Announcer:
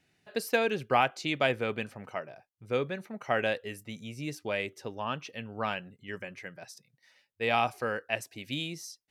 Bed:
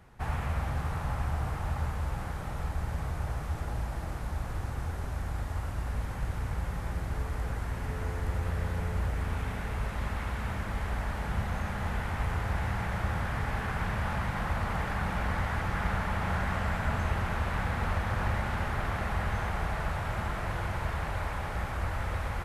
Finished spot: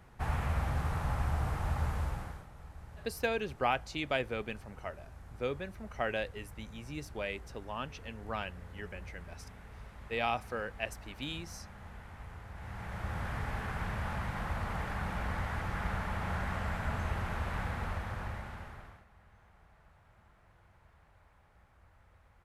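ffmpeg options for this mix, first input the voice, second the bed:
-filter_complex "[0:a]adelay=2700,volume=-5.5dB[a];[1:a]volume=10.5dB,afade=t=out:st=1.99:d=0.48:silence=0.16788,afade=t=in:st=12.54:d=0.73:silence=0.266073,afade=t=out:st=17.62:d=1.43:silence=0.0530884[b];[a][b]amix=inputs=2:normalize=0"

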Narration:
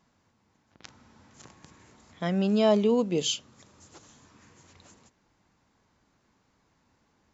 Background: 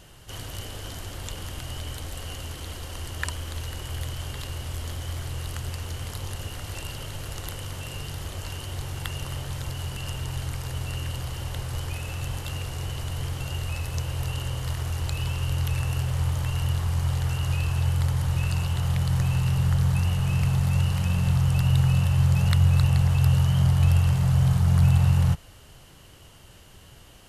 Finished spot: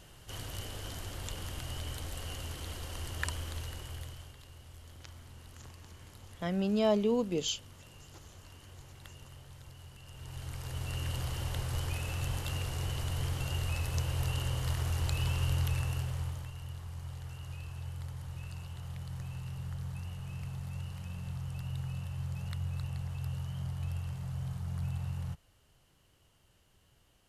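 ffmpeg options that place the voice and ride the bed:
-filter_complex "[0:a]adelay=4200,volume=-5.5dB[a];[1:a]volume=10.5dB,afade=t=out:st=3.39:d=0.97:silence=0.199526,afade=t=in:st=10.09:d=1.12:silence=0.16788,afade=t=out:st=15.44:d=1.09:silence=0.199526[b];[a][b]amix=inputs=2:normalize=0"

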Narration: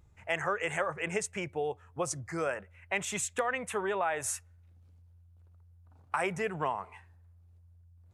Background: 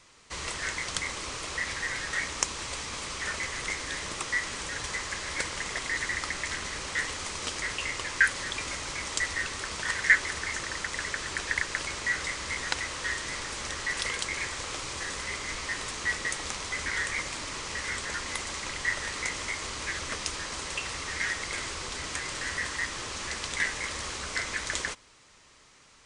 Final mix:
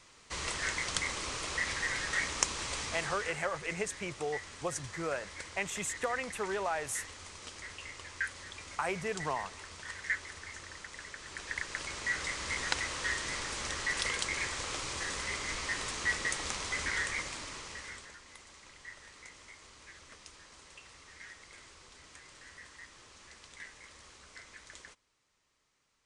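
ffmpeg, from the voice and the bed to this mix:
-filter_complex "[0:a]adelay=2650,volume=-3dB[a];[1:a]volume=9.5dB,afade=t=out:st=2.85:d=0.55:silence=0.266073,afade=t=in:st=11.19:d=1.41:silence=0.281838,afade=t=out:st=16.83:d=1.34:silence=0.133352[b];[a][b]amix=inputs=2:normalize=0"

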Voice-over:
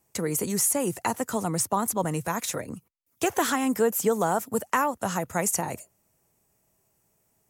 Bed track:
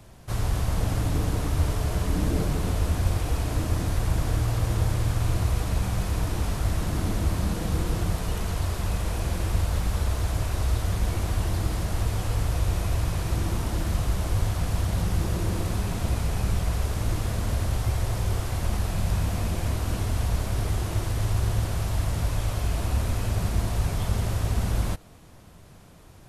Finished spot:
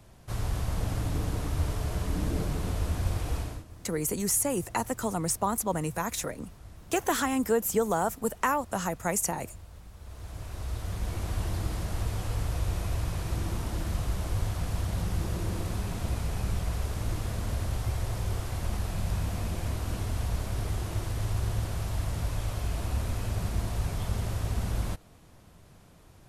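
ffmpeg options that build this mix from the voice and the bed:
-filter_complex "[0:a]adelay=3700,volume=-2.5dB[a];[1:a]volume=12.5dB,afade=t=out:st=3.37:d=0.27:silence=0.133352,afade=t=in:st=9.98:d=1.42:silence=0.133352[b];[a][b]amix=inputs=2:normalize=0"

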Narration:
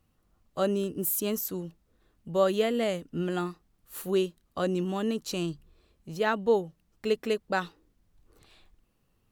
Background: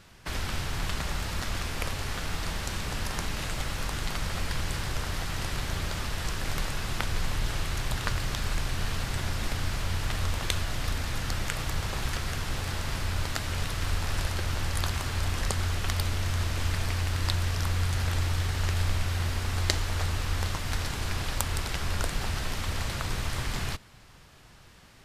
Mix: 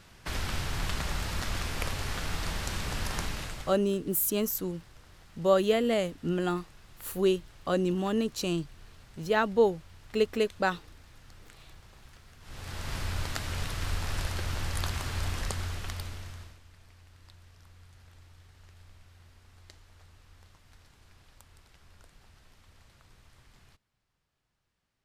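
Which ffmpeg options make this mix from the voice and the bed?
-filter_complex "[0:a]adelay=3100,volume=1dB[a];[1:a]volume=19dB,afade=t=out:st=3.21:d=0.59:silence=0.0794328,afade=t=in:st=12.4:d=0.57:silence=0.1,afade=t=out:st=15.26:d=1.34:silence=0.0595662[b];[a][b]amix=inputs=2:normalize=0"

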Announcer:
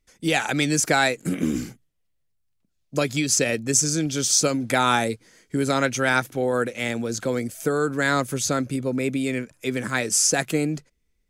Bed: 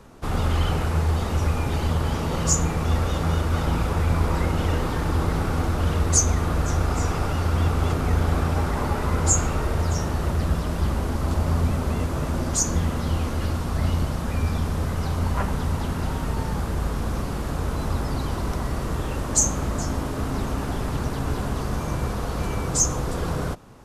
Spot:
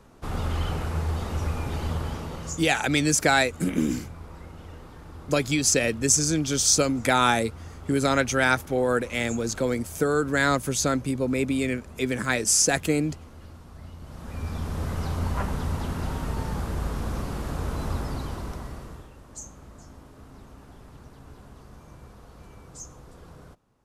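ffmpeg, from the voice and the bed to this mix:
-filter_complex "[0:a]adelay=2350,volume=-0.5dB[a];[1:a]volume=11dB,afade=t=out:st=1.95:d=0.75:silence=0.188365,afade=t=in:st=14:d=0.93:silence=0.149624,afade=t=out:st=17.91:d=1.2:silence=0.133352[b];[a][b]amix=inputs=2:normalize=0"

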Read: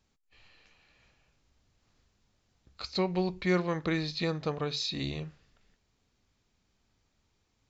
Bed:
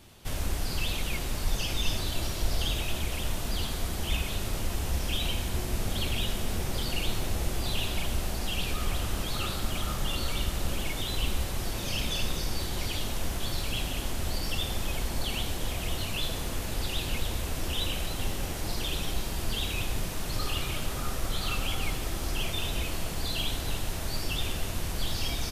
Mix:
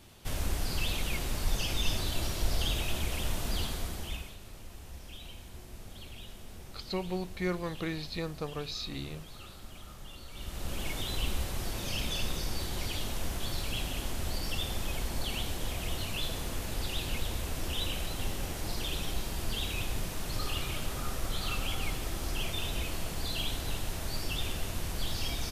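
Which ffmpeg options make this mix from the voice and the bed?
-filter_complex "[0:a]adelay=3950,volume=-5dB[a];[1:a]volume=12dB,afade=t=out:st=3.58:d=0.78:silence=0.177828,afade=t=in:st=10.31:d=0.59:silence=0.211349[b];[a][b]amix=inputs=2:normalize=0"

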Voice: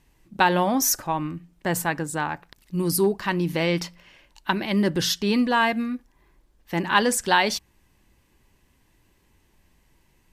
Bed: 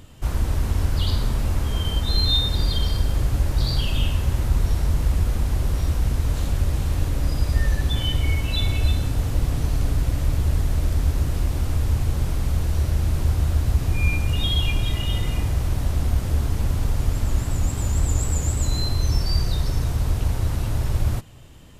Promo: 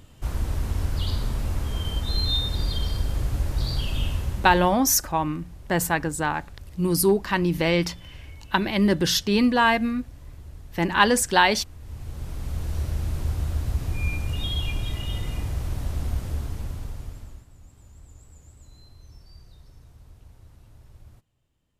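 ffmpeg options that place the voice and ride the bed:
-filter_complex "[0:a]adelay=4050,volume=1.5dB[a];[1:a]volume=11dB,afade=t=out:st=4.14:d=0.64:silence=0.141254,afade=t=in:st=11.79:d=0.96:silence=0.16788,afade=t=out:st=16.14:d=1.32:silence=0.0841395[b];[a][b]amix=inputs=2:normalize=0"

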